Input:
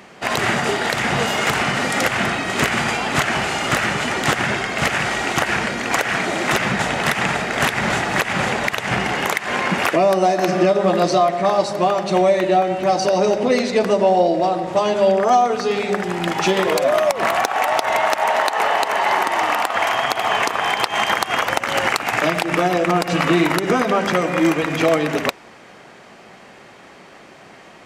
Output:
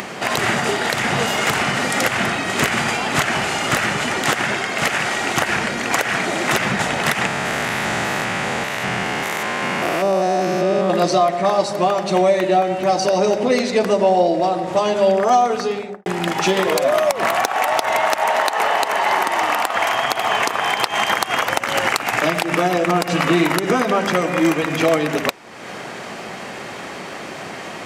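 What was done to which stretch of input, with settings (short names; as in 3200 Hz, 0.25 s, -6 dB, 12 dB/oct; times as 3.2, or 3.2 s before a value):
4.23–5.22 bell 75 Hz -6.5 dB 2.3 oct
7.26–10.9 stepped spectrum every 0.2 s
15.55–16.06 studio fade out
whole clip: HPF 69 Hz; high shelf 7000 Hz +4 dB; upward compressor, threshold -19 dBFS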